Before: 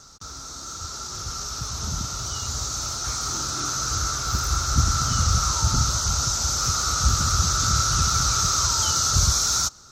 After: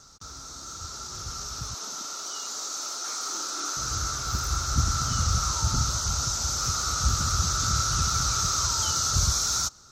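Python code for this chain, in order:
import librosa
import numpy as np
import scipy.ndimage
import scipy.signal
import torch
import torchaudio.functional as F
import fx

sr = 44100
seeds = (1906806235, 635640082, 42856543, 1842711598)

y = fx.highpass(x, sr, hz=290.0, slope=24, at=(1.74, 3.77))
y = F.gain(torch.from_numpy(y), -4.0).numpy()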